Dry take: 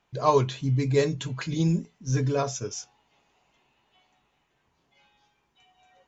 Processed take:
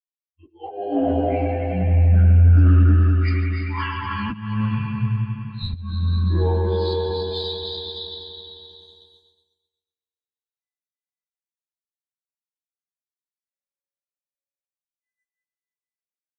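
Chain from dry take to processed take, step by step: expander on every frequency bin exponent 3; recorder AGC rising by 29 dB/s; low-pass that closes with the level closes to 2.6 kHz, closed at -22 dBFS; on a send: bouncing-ball echo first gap 110 ms, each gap 0.7×, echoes 5; on the sum: wide varispeed 0.667×; spring tank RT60 1.9 s, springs 47 ms, chirp 25 ms, DRR -1.5 dB; slow attack 209 ms; in parallel at -7 dB: saturation -14 dBFS, distortion -12 dB; on the sum: plain phase-vocoder stretch 1.8×; expander -47 dBFS; loudspeaker Doppler distortion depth 0.11 ms

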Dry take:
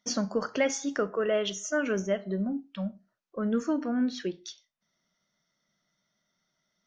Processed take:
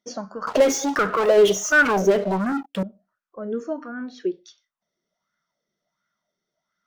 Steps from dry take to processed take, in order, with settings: 0.47–2.83 s: waveshaping leveller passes 5; sweeping bell 1.4 Hz 380–1500 Hz +16 dB; trim -6.5 dB

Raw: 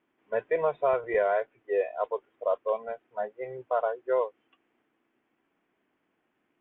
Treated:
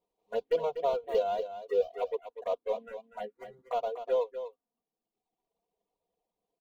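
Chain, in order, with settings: median filter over 25 samples; reverb removal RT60 1.1 s; touch-sensitive phaser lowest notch 260 Hz, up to 1.8 kHz, full sweep at -26 dBFS; comb 4.2 ms, depth 71%; on a send: delay 244 ms -10.5 dB; on the sum: trim -2.5 dB

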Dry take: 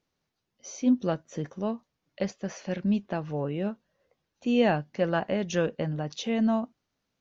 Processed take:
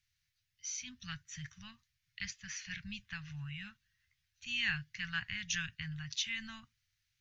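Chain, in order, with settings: Chebyshev band-stop 110–1800 Hz, order 3; trim +2.5 dB

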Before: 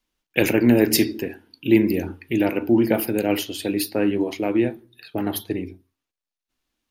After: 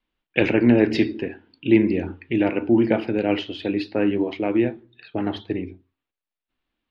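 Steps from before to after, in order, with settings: low-pass 3.6 kHz 24 dB/octave

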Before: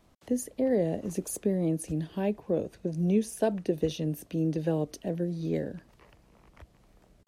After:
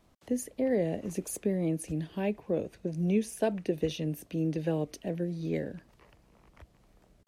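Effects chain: dynamic bell 2.3 kHz, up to +7 dB, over -58 dBFS, Q 1.9; trim -2 dB

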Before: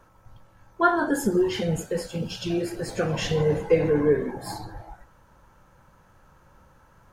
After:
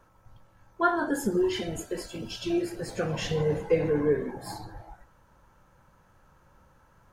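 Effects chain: 1.43–2.65 s: comb 3 ms, depth 65%; trim -4 dB

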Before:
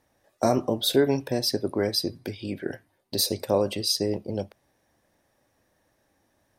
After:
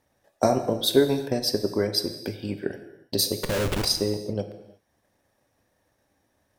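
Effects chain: transient shaper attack +5 dB, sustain -3 dB; 3.40–3.85 s: Schmitt trigger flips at -31.5 dBFS; gated-style reverb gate 390 ms falling, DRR 8 dB; trim -2 dB

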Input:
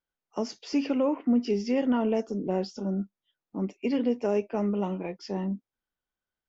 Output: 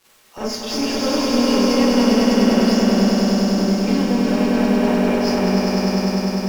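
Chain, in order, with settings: companding laws mixed up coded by mu; harmonic-percussive split harmonic -7 dB; in parallel at +1.5 dB: peak limiter -28.5 dBFS, peak gain reduction 11 dB; on the sum: crackle 510 per s -43 dBFS; one-sided clip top -30.5 dBFS; on a send: echo with a slow build-up 100 ms, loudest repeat 5, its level -3.5 dB; on the sum: Schroeder reverb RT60 0.41 s, combs from 29 ms, DRR -8.5 dB; trim -3 dB

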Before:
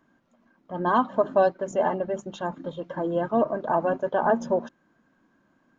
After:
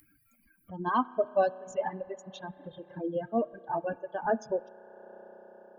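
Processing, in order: expander on every frequency bin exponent 2; spring tank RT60 2.8 s, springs 32 ms, chirp 65 ms, DRR 7 dB; upward compressor, threshold -33 dBFS; reverb removal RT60 1.2 s; trim -2.5 dB

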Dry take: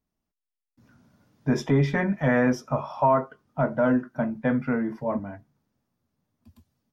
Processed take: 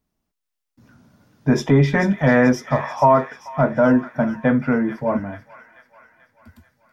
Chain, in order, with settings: feedback echo behind a high-pass 437 ms, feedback 54%, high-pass 1.7 kHz, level -9 dB; trim +6.5 dB

